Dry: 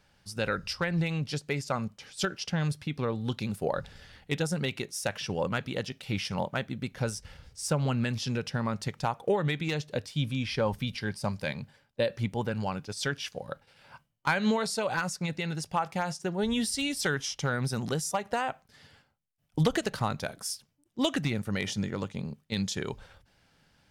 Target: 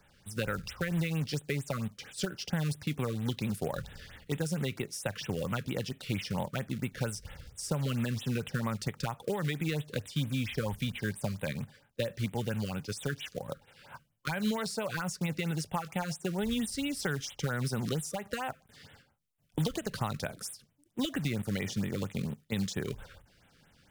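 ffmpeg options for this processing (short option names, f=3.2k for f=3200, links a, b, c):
-filter_complex "[0:a]acrossover=split=170|1700[a][b][c];[a]acompressor=threshold=-37dB:ratio=4[d];[b]acompressor=threshold=-36dB:ratio=4[e];[c]acompressor=threshold=-41dB:ratio=4[f];[d][e][f]amix=inputs=3:normalize=0,acrusher=bits=4:mode=log:mix=0:aa=0.000001,afftfilt=real='re*(1-between(b*sr/1024,730*pow(5700/730,0.5+0.5*sin(2*PI*4.4*pts/sr))/1.41,730*pow(5700/730,0.5+0.5*sin(2*PI*4.4*pts/sr))*1.41))':imag='im*(1-between(b*sr/1024,730*pow(5700/730,0.5+0.5*sin(2*PI*4.4*pts/sr))/1.41,730*pow(5700/730,0.5+0.5*sin(2*PI*4.4*pts/sr))*1.41))':win_size=1024:overlap=0.75,volume=2.5dB"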